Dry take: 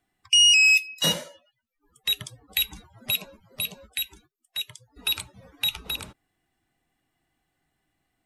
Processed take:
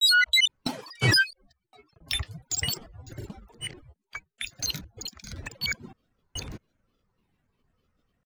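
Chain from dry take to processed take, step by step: slices played last to first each 219 ms, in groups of 3; tone controls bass +9 dB, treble -7 dB; granulator, spray 33 ms, pitch spread up and down by 12 st

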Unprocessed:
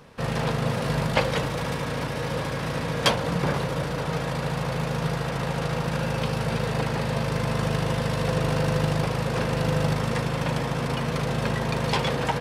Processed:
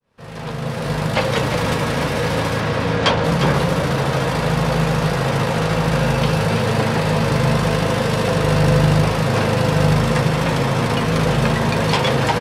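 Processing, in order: fade-in on the opening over 1.75 s; in parallel at 0 dB: peak limiter -19 dBFS, peak gain reduction 11 dB; 2.60–3.24 s: on the sum: distance through air 85 m; on a send: delay 353 ms -9 dB; on the sum: flange 0.74 Hz, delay 8.7 ms, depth 5.2 ms, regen -48%; trim +7 dB

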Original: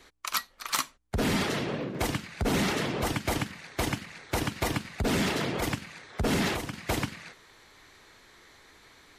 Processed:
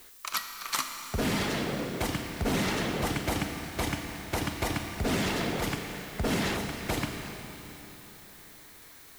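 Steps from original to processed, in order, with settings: Schroeder reverb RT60 3.8 s, combs from 27 ms, DRR 5 dB; added noise blue -51 dBFS; trim -2 dB

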